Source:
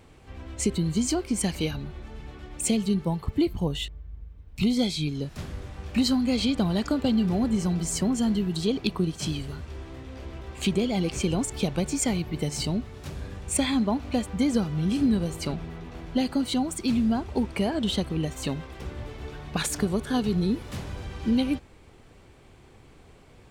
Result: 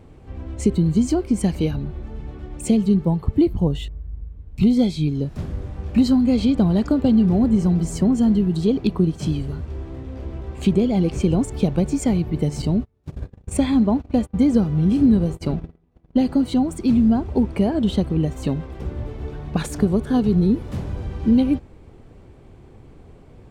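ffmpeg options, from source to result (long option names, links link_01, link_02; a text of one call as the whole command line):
ffmpeg -i in.wav -filter_complex "[0:a]asettb=1/sr,asplit=3[link_01][link_02][link_03];[link_01]atrim=end=12.624[link_04];[link_02]atrim=start=12.62:end=16.26,asetpts=PTS-STARTPTS,afade=type=in:duration=0.004:curve=qsin,afade=type=out:start_time=3.636:duration=0.004:curve=qsin,agate=range=-32dB:threshold=-35dB:ratio=16:release=100:detection=peak[link_05];[link_03]atrim=start=16.256[link_06];[link_04][link_05]acrossfade=duration=0.004:curve1=hsin:curve2=qsin[link_07];[link_07][link_06]acrossfade=duration=0.004:curve1=qsin:curve2=hsin,tiltshelf=frequency=970:gain=7,volume=1.5dB" out.wav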